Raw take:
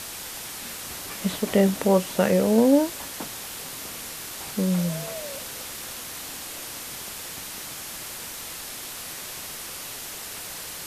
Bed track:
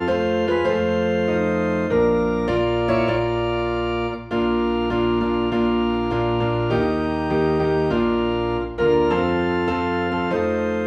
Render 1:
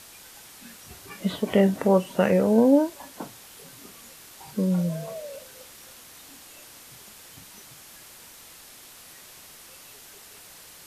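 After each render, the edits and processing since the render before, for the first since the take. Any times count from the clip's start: noise print and reduce 11 dB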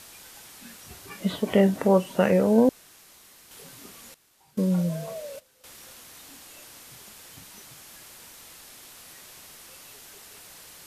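2.69–3.51 s: room tone; 4.14–5.64 s: gate -41 dBFS, range -16 dB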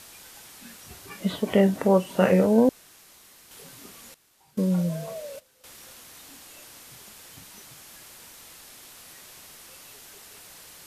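2.06–2.46 s: doubling 32 ms -5 dB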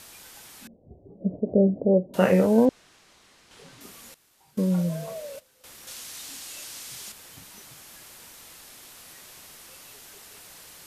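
0.67–2.14 s: steep low-pass 650 Hz 48 dB/octave; 2.65–3.81 s: distance through air 77 m; 5.87–7.12 s: peaking EQ 5.9 kHz +9.5 dB 2.9 oct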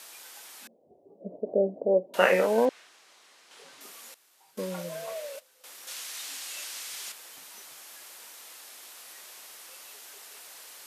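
high-pass 470 Hz 12 dB/octave; dynamic bell 2.1 kHz, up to +7 dB, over -47 dBFS, Q 0.72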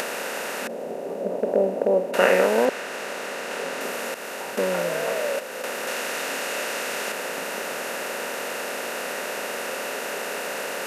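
spectral levelling over time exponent 0.4; upward compressor, threshold -26 dBFS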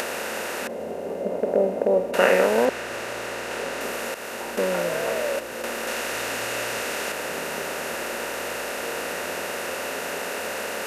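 add bed track -23 dB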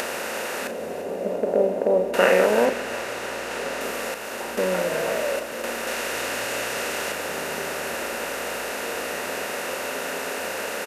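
doubling 38 ms -10.5 dB; two-band feedback delay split 670 Hz, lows 152 ms, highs 342 ms, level -13.5 dB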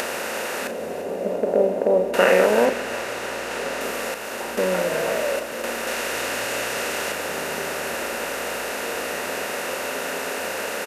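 trim +1.5 dB; peak limiter -2 dBFS, peak gain reduction 1.5 dB

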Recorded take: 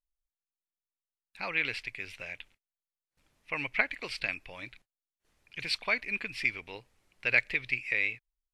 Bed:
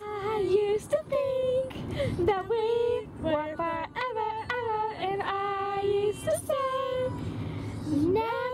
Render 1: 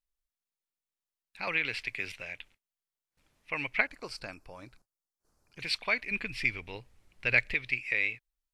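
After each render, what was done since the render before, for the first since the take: 1.47–2.12 s: three bands compressed up and down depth 70%; 3.87–5.60 s: high-order bell 2.6 kHz -14.5 dB 1.3 oct; 6.11–7.54 s: bass shelf 160 Hz +11 dB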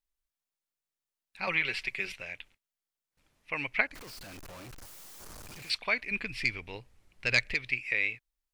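1.41–2.14 s: comb 5.3 ms, depth 68%; 3.95–5.70 s: one-bit comparator; 6.22–7.65 s: self-modulated delay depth 0.081 ms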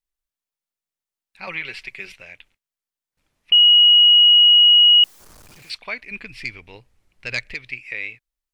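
3.52–5.04 s: bleep 2.9 kHz -8 dBFS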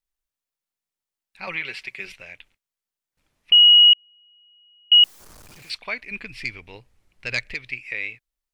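1.56–2.00 s: high-pass 110 Hz 6 dB/octave; 3.93–4.92 s: cascade formant filter a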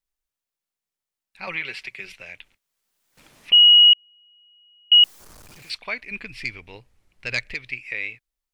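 1.84–3.53 s: three bands compressed up and down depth 70%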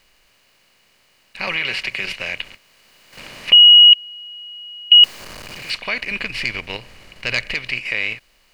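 spectral levelling over time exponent 0.6; in parallel at +2 dB: level held to a coarse grid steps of 17 dB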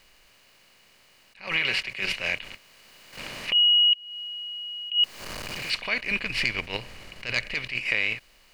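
compression 4:1, threshold -20 dBFS, peak gain reduction 12.5 dB; attacks held to a fixed rise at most 170 dB/s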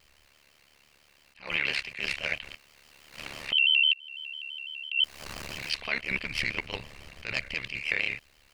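AM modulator 72 Hz, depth 80%; vibrato with a chosen wave square 6 Hz, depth 100 cents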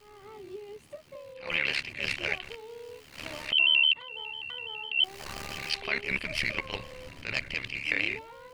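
add bed -18 dB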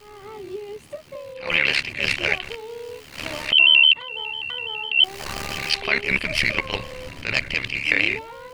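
trim +9 dB

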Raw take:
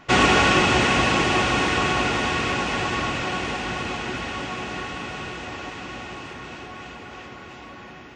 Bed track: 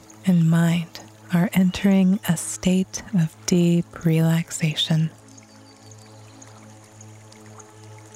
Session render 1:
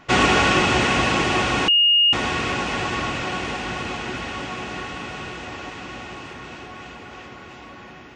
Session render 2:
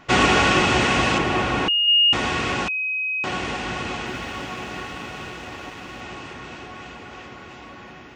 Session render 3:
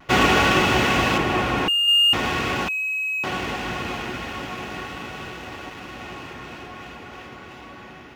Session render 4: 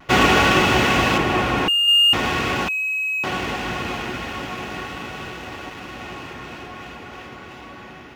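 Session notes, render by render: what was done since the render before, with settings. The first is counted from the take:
1.68–2.13 s: bleep 2.85 kHz -12.5 dBFS
1.18–1.88 s: treble shelf 3.3 kHz -9.5 dB; 2.68–3.24 s: bleep 2.53 kHz -22 dBFS; 4.06–6.01 s: companding laws mixed up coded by A
median filter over 5 samples; vibrato 0.42 Hz 16 cents
trim +2 dB

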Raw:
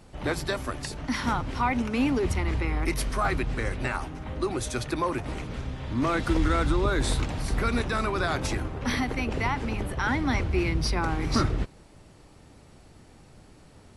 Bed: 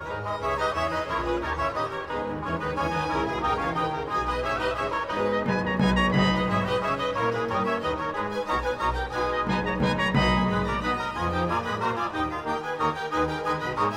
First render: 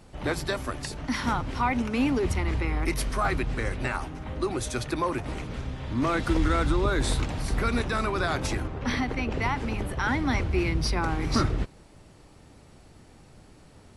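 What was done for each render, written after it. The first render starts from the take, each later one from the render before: 8.67–9.42 s: distance through air 55 m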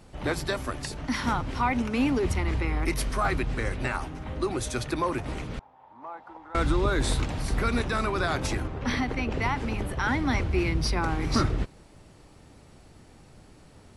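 5.59–6.55 s: band-pass filter 860 Hz, Q 7.8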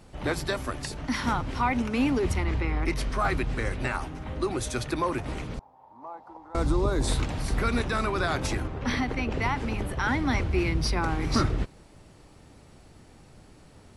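2.44–3.20 s: distance through air 55 m; 5.54–7.08 s: high-order bell 2.2 kHz -8.5 dB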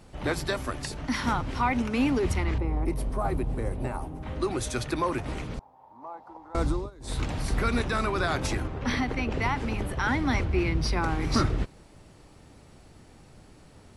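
2.58–4.23 s: high-order bell 3 kHz -13.5 dB 2.8 oct; 6.64–7.27 s: dip -24 dB, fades 0.27 s; 10.44–10.90 s: treble shelf 4.7 kHz -> 7.9 kHz -8 dB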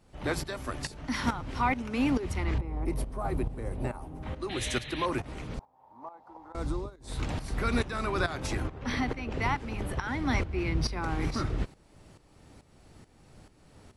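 4.49–5.06 s: painted sound noise 1.6–4.2 kHz -36 dBFS; tremolo saw up 2.3 Hz, depth 75%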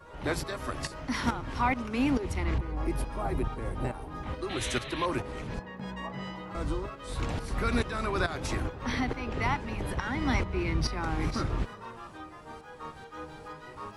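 add bed -17 dB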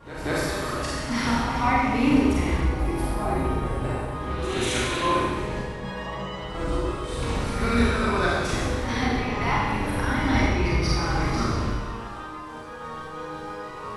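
pre-echo 187 ms -12.5 dB; Schroeder reverb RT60 1.4 s, combs from 30 ms, DRR -6 dB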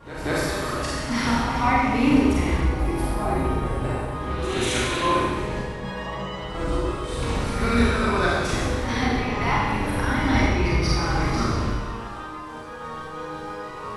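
trim +1.5 dB

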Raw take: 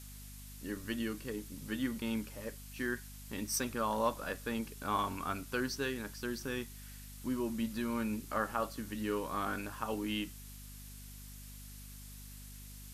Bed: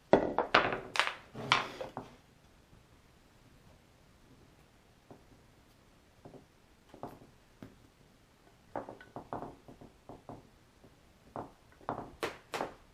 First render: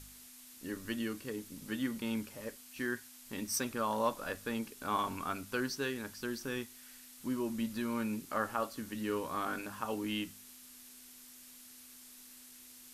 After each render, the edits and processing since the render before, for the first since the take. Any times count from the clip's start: de-hum 50 Hz, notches 4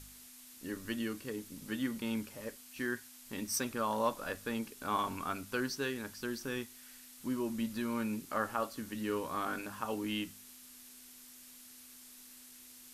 no audible change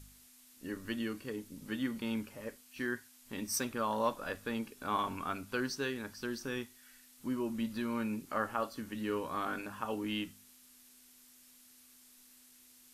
noise print and reduce 6 dB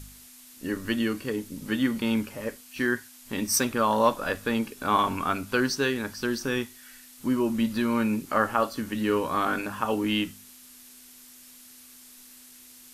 trim +10.5 dB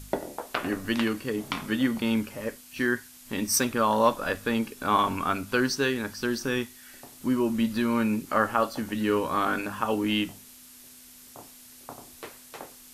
add bed -5 dB

